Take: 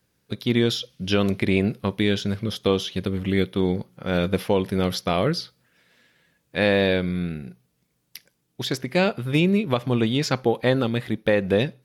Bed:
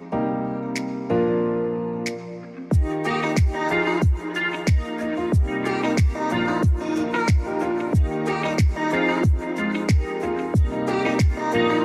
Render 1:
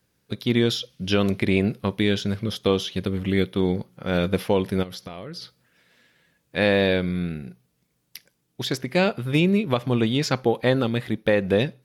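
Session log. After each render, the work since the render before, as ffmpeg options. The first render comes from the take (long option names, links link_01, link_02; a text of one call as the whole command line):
ffmpeg -i in.wav -filter_complex "[0:a]asplit=3[link_01][link_02][link_03];[link_01]afade=type=out:start_time=4.82:duration=0.02[link_04];[link_02]acompressor=threshold=-32dB:ratio=12:attack=3.2:release=140:knee=1:detection=peak,afade=type=in:start_time=4.82:duration=0.02,afade=type=out:start_time=5.41:duration=0.02[link_05];[link_03]afade=type=in:start_time=5.41:duration=0.02[link_06];[link_04][link_05][link_06]amix=inputs=3:normalize=0" out.wav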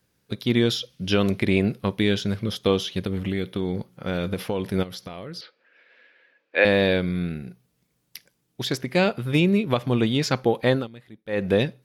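ffmpeg -i in.wav -filter_complex "[0:a]asettb=1/sr,asplit=3[link_01][link_02][link_03];[link_01]atrim=end=3.064[link_04];[link_02]atrim=start=3.06:end=4.74,asetpts=PTS-STARTPTS,afade=type=in:duration=0.004:curve=qsin,afade=type=out:start_time=1.676:duration=0.004:curve=qsin,acompressor=threshold=-21dB:ratio=6:attack=3.2:release=140:knee=1:detection=peak[link_05];[link_03]atrim=start=4.736[link_06];[link_04][link_05]acrossfade=duration=0.004:curve1=hsin:curve2=qsin[link_07];[link_07][link_06]acrossfade=duration=0.004:curve1=qsin:curve2=hsin,asettb=1/sr,asplit=3[link_08][link_09][link_10];[link_08]atrim=end=5.414[link_11];[link_09]atrim=start=5.41:end=6.65,asetpts=PTS-STARTPTS,afade=type=in:duration=0.004:curve=qsin,afade=type=out:start_time=1.236:duration=0.004:curve=qsin,highpass=frequency=310:width=0.5412,highpass=frequency=310:width=1.3066,equalizer=frequency=530:width_type=q:width=4:gain=6,equalizer=frequency=1600:width_type=q:width=4:gain=7,equalizer=frequency=2400:width_type=q:width=4:gain=7,equalizer=frequency=3600:width_type=q:width=4:gain=-3,lowpass=frequency=4100:width=0.5412,lowpass=frequency=4100:width=1.3066[link_12];[link_10]atrim=start=6.646[link_13];[link_11][link_12]acrossfade=duration=0.004:curve1=hsin:curve2=qsin[link_14];[link_14][link_13]acrossfade=duration=0.004:curve1=qsin:curve2=hsin,asplit=3[link_15][link_16][link_17];[link_15]atrim=end=10.88,asetpts=PTS-STARTPTS,afade=type=out:start_time=10.74:duration=0.14:silence=0.112202[link_18];[link_16]atrim=start=10.88:end=11.28,asetpts=PTS-STARTPTS,volume=-19dB[link_19];[link_17]atrim=start=11.28,asetpts=PTS-STARTPTS,afade=type=in:duration=0.14:silence=0.112202[link_20];[link_18][link_19][link_20]concat=n=3:v=0:a=1" out.wav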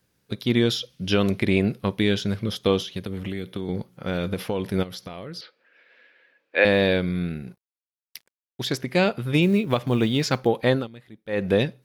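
ffmpeg -i in.wav -filter_complex "[0:a]asettb=1/sr,asplit=3[link_01][link_02][link_03];[link_01]atrim=end=2.814[link_04];[link_02]atrim=start=2.81:end=3.69,asetpts=PTS-STARTPTS,afade=type=in:duration=0.004:curve=qsin,afade=type=out:start_time=0.876:duration=0.004:curve=qsin,acrossover=split=320|6300[link_05][link_06][link_07];[link_05]acompressor=threshold=-30dB:ratio=4[link_08];[link_06]acompressor=threshold=-34dB:ratio=4[link_09];[link_07]acompressor=threshold=-47dB:ratio=4[link_10];[link_08][link_09][link_10]amix=inputs=3:normalize=0[link_11];[link_03]atrim=start=3.686[link_12];[link_04][link_11]acrossfade=duration=0.004:curve1=hsin:curve2=qsin[link_13];[link_13][link_12]acrossfade=duration=0.004:curve1=qsin:curve2=hsin,asettb=1/sr,asplit=3[link_14][link_15][link_16];[link_14]atrim=end=7.474[link_17];[link_15]atrim=start=7.47:end=8.68,asetpts=PTS-STARTPTS,afade=type=in:duration=0.004:curve=qsin,afade=type=out:start_time=1.206:duration=0.004:curve=qsin,aeval=exprs='sgn(val(0))*max(abs(val(0))-0.00158,0)':channel_layout=same[link_18];[link_16]atrim=start=8.676[link_19];[link_17][link_18]acrossfade=duration=0.004:curve1=hsin:curve2=qsin[link_20];[link_20][link_19]acrossfade=duration=0.004:curve1=qsin:curve2=hsin,asettb=1/sr,asplit=3[link_21][link_22][link_23];[link_21]atrim=end=9.424[link_24];[link_22]atrim=start=9.42:end=10.47,asetpts=PTS-STARTPTS,afade=type=in:duration=0.004:curve=qsin,afade=type=out:start_time=1.046:duration=0.004:curve=qsin,acrusher=bits=9:mode=log:mix=0:aa=0.000001[link_25];[link_23]atrim=start=10.466[link_26];[link_24][link_25]acrossfade=duration=0.004:curve1=hsin:curve2=qsin[link_27];[link_27][link_26]acrossfade=duration=0.004:curve1=qsin:curve2=hsin" out.wav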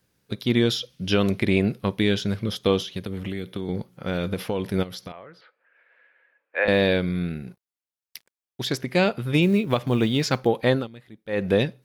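ffmpeg -i in.wav -filter_complex "[0:a]asettb=1/sr,asplit=3[link_01][link_02][link_03];[link_01]atrim=end=5.124[link_04];[link_02]atrim=start=5.12:end=6.68,asetpts=PTS-STARTPTS,afade=type=in:duration=0.004:curve=qsin,afade=type=out:start_time=1.556:duration=0.004:curve=qsin,acrossover=split=570 2200:gain=0.2 1 0.0708[link_05][link_06][link_07];[link_05][link_06][link_07]amix=inputs=3:normalize=0[link_08];[link_03]atrim=start=6.676[link_09];[link_04][link_08]acrossfade=duration=0.004:curve1=hsin:curve2=qsin[link_10];[link_10][link_09]acrossfade=duration=0.004:curve1=qsin:curve2=hsin" out.wav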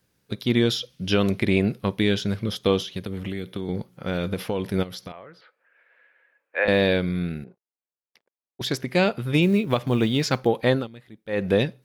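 ffmpeg -i in.wav -filter_complex "[0:a]asettb=1/sr,asplit=3[link_01][link_02][link_03];[link_01]atrim=end=7.444[link_04];[link_02]atrim=start=7.44:end=8.61,asetpts=PTS-STARTPTS,afade=type=in:duration=0.004:curve=qsin,afade=type=out:start_time=1.166:duration=0.004:curve=qsin,bandpass=frequency=500:width_type=q:width=1.1[link_05];[link_03]atrim=start=8.606[link_06];[link_04][link_05]acrossfade=duration=0.004:curve1=hsin:curve2=qsin[link_07];[link_07][link_06]acrossfade=duration=0.004:curve1=qsin:curve2=hsin" out.wav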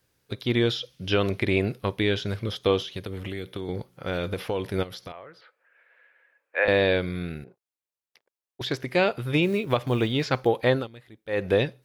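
ffmpeg -i in.wav -filter_complex "[0:a]acrossover=split=4200[link_01][link_02];[link_02]acompressor=threshold=-45dB:ratio=4:attack=1:release=60[link_03];[link_01][link_03]amix=inputs=2:normalize=0,equalizer=frequency=200:width_type=o:width=0.72:gain=-8.5" out.wav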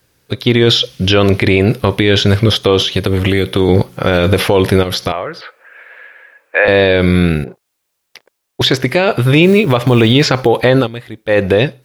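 ffmpeg -i in.wav -af "dynaudnorm=framelen=140:gausssize=9:maxgain=10.5dB,alimiter=level_in=12.5dB:limit=-1dB:release=50:level=0:latency=1" out.wav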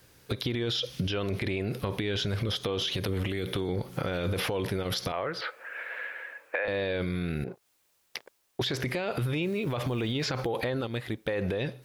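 ffmpeg -i in.wav -af "alimiter=limit=-12dB:level=0:latency=1:release=54,acompressor=threshold=-29dB:ratio=4" out.wav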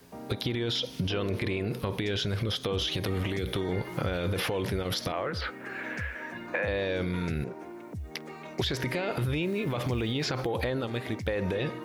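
ffmpeg -i in.wav -i bed.wav -filter_complex "[1:a]volume=-19.5dB[link_01];[0:a][link_01]amix=inputs=2:normalize=0" out.wav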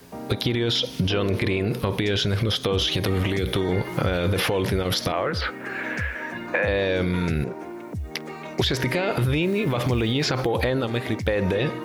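ffmpeg -i in.wav -af "volume=7dB" out.wav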